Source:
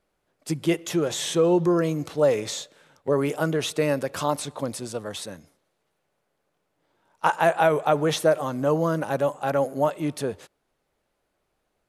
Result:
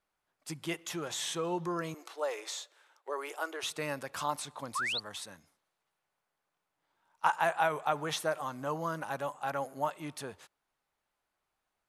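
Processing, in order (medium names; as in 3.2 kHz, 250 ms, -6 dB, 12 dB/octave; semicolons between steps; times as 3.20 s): 1.94–3.63 s: elliptic high-pass 340 Hz, stop band 50 dB; 4.75–5.00 s: painted sound rise 980–4700 Hz -27 dBFS; resonant low shelf 690 Hz -7 dB, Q 1.5; trim -7 dB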